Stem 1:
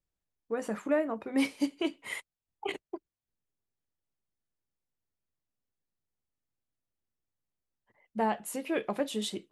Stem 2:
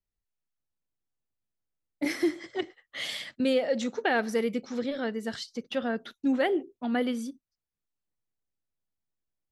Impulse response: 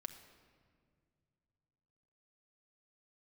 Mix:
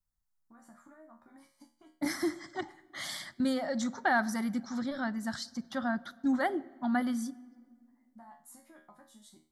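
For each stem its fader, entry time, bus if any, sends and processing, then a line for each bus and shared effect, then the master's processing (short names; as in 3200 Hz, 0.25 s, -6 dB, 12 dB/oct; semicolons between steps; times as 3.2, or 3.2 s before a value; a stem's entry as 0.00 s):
0.0 dB, 0.00 s, no send, compressor 10:1, threshold -37 dBFS, peak gain reduction 15 dB; resonator 78 Hz, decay 0.39 s, harmonics all, mix 90%
+1.0 dB, 0.00 s, send -6.5 dB, dry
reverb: on, RT60 2.1 s, pre-delay 5 ms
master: fixed phaser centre 1100 Hz, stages 4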